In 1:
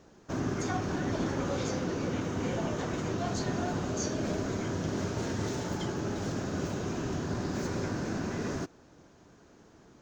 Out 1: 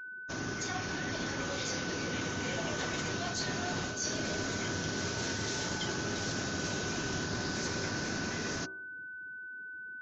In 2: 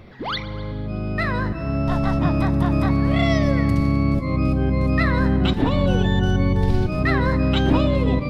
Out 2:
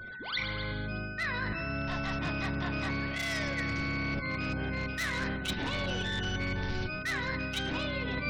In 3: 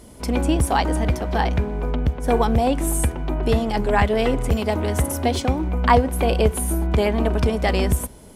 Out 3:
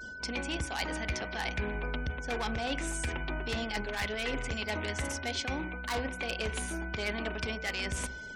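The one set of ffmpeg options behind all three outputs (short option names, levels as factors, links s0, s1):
-af "lowpass=f=6000:w=0.5412,lowpass=f=6000:w=1.3066,adynamicequalizer=threshold=0.00631:dfrequency=2200:dqfactor=1.9:tfrequency=2200:tqfactor=1.9:attack=5:release=100:ratio=0.375:range=3.5:mode=boostabove:tftype=bell,dynaudnorm=f=310:g=13:m=1.88,asoftclip=type=hard:threshold=0.224,crystalizer=i=8.5:c=0,areverse,acompressor=threshold=0.0631:ratio=8,areverse,afftfilt=real='re*gte(hypot(re,im),0.00794)':imag='im*gte(hypot(re,im),0.00794)':win_size=1024:overlap=0.75,highshelf=f=3000:g=-2.5,bandreject=f=63.52:t=h:w=4,bandreject=f=127.04:t=h:w=4,bandreject=f=190.56:t=h:w=4,bandreject=f=254.08:t=h:w=4,bandreject=f=317.6:t=h:w=4,bandreject=f=381.12:t=h:w=4,bandreject=f=444.64:t=h:w=4,bandreject=f=508.16:t=h:w=4,bandreject=f=571.68:t=h:w=4,bandreject=f=635.2:t=h:w=4,bandreject=f=698.72:t=h:w=4,bandreject=f=762.24:t=h:w=4,bandreject=f=825.76:t=h:w=4,bandreject=f=889.28:t=h:w=4,bandreject=f=952.8:t=h:w=4,bandreject=f=1016.32:t=h:w=4,bandreject=f=1079.84:t=h:w=4,bandreject=f=1143.36:t=h:w=4,bandreject=f=1206.88:t=h:w=4,bandreject=f=1270.4:t=h:w=4,aeval=exprs='val(0)+0.0178*sin(2*PI*1500*n/s)':c=same,volume=0.473"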